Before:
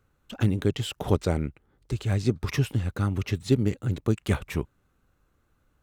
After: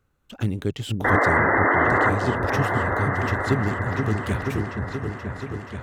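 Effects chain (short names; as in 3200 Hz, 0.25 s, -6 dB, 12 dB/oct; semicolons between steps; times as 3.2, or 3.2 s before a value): painted sound noise, 1.04–2.1, 240–2100 Hz -18 dBFS; on a send: repeats that get brighter 0.479 s, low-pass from 400 Hz, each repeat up 2 oct, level -3 dB; on the sum: gain -1.5 dB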